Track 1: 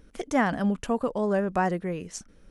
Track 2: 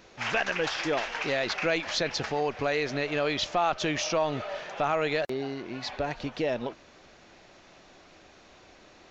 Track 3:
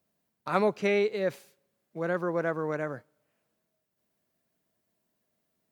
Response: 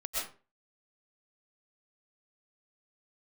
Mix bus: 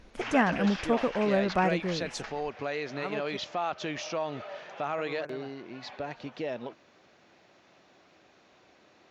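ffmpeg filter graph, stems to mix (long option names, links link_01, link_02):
-filter_complex "[0:a]volume=-1dB[link_01];[1:a]highpass=110,volume=-5.5dB[link_02];[2:a]adelay=2500,volume=-11.5dB,asplit=3[link_03][link_04][link_05];[link_03]atrim=end=3.37,asetpts=PTS-STARTPTS,afade=type=out:start_time=3.366:duration=0.004:curve=hsin[link_06];[link_04]atrim=start=3.37:end=4.98,asetpts=PTS-STARTPTS,volume=0[link_07];[link_05]atrim=start=4.98,asetpts=PTS-STARTPTS,afade=type=in:duration=0.004:curve=hsin[link_08];[link_06][link_07][link_08]concat=n=3:v=0:a=1[link_09];[link_01][link_02][link_09]amix=inputs=3:normalize=0,highshelf=frequency=7600:gain=-10.5"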